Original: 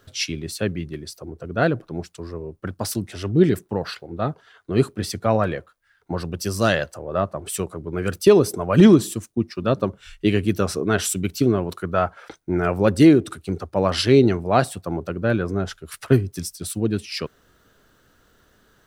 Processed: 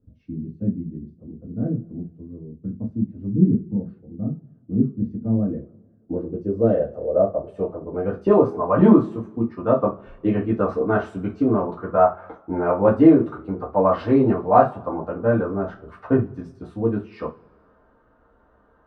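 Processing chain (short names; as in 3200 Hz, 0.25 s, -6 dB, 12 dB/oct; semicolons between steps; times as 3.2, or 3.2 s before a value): low-pass sweep 210 Hz -> 980 Hz, 4.95–8.54; two-slope reverb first 0.23 s, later 1.5 s, from -27 dB, DRR -5.5 dB; gain -6.5 dB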